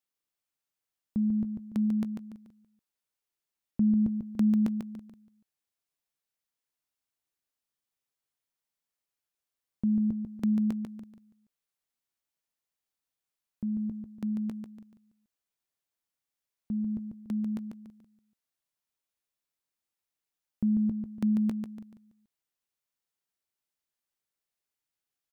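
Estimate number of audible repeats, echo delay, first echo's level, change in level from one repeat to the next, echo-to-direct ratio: 3, 144 ms, -6.0 dB, -9.0 dB, -5.5 dB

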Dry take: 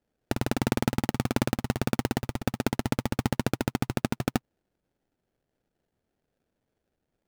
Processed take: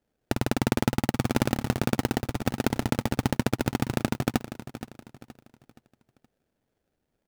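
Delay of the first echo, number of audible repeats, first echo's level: 472 ms, 3, -13.0 dB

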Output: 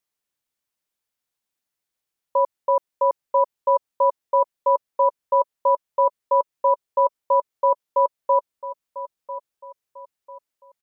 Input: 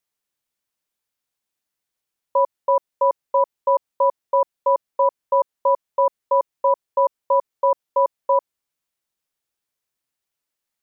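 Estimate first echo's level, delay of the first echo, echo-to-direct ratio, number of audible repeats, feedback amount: -15.0 dB, 996 ms, -14.5 dB, 3, 37%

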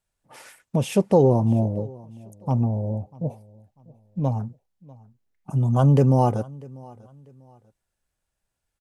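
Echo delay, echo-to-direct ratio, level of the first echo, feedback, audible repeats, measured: 644 ms, -22.5 dB, -23.0 dB, 31%, 2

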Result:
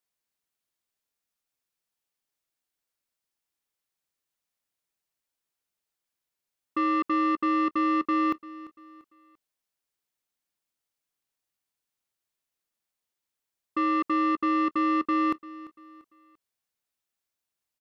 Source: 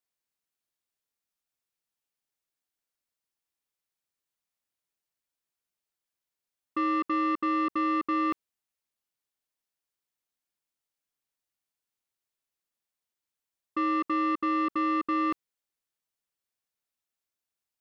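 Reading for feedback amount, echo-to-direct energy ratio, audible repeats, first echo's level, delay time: 39%, -18.0 dB, 3, -18.5 dB, 343 ms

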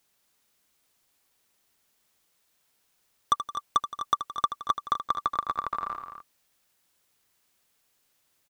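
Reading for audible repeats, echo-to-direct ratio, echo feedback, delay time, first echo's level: 3, -6.5 dB, no regular repeats, 79 ms, -11.0 dB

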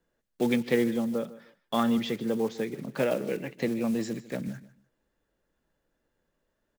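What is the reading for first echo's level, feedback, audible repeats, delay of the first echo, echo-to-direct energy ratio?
-17.5 dB, 24%, 2, 151 ms, -17.5 dB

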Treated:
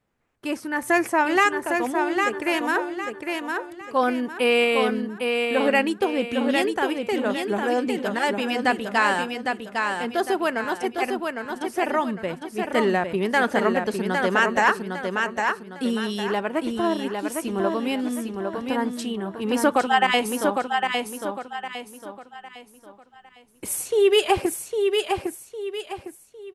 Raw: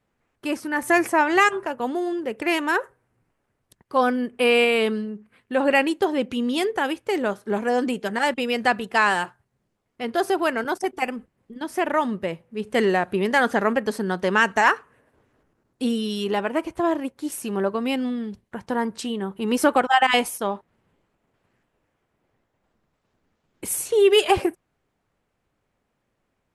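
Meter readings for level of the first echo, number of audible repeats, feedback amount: -4.5 dB, 4, 36%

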